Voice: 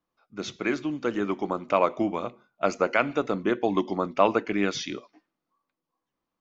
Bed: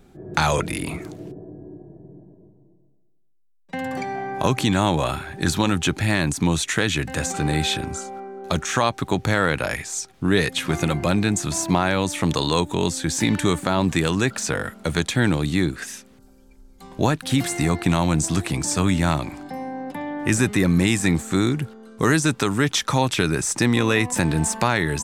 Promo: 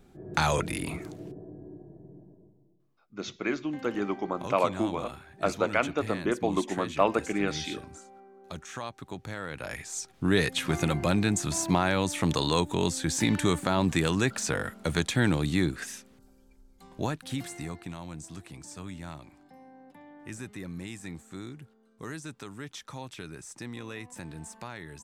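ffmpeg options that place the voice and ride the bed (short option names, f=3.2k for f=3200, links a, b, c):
-filter_complex "[0:a]adelay=2800,volume=-3dB[a];[1:a]volume=7dB,afade=t=out:st=2.31:d=0.77:silence=0.251189,afade=t=in:st=9.49:d=0.7:silence=0.237137,afade=t=out:st=15.81:d=2.12:silence=0.158489[b];[a][b]amix=inputs=2:normalize=0"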